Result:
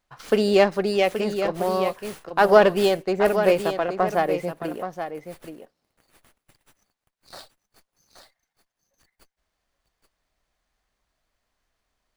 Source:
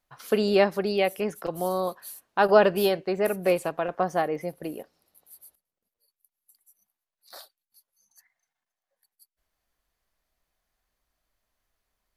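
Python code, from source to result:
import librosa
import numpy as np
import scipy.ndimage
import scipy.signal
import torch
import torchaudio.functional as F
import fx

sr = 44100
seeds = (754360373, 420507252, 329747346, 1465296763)

p1 = x + fx.echo_single(x, sr, ms=826, db=-9.0, dry=0)
p2 = fx.running_max(p1, sr, window=3)
y = p2 * librosa.db_to_amplitude(3.5)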